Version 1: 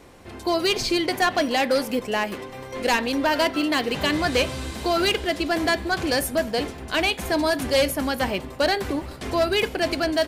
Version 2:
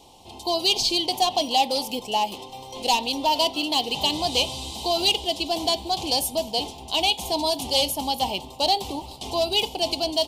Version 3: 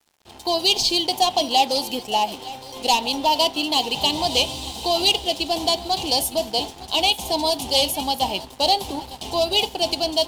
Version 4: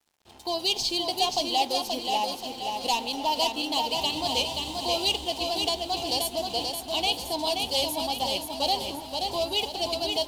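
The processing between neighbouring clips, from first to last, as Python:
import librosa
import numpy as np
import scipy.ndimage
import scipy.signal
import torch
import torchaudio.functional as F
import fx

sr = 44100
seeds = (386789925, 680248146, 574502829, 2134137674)

y1 = fx.curve_eq(x, sr, hz=(580.0, 860.0, 1600.0, 3000.0, 11000.0), db=(0, 14, -25, 13, 8))
y1 = y1 * librosa.db_to_amplitude(-6.5)
y2 = y1 + 10.0 ** (-16.0 / 20.0) * np.pad(y1, (int(909 * sr / 1000.0), 0))[:len(y1)]
y2 = np.sign(y2) * np.maximum(np.abs(y2) - 10.0 ** (-45.5 / 20.0), 0.0)
y2 = y2 * librosa.db_to_amplitude(3.0)
y3 = fx.echo_feedback(y2, sr, ms=529, feedback_pct=46, wet_db=-4.5)
y3 = y3 * librosa.db_to_amplitude(-7.5)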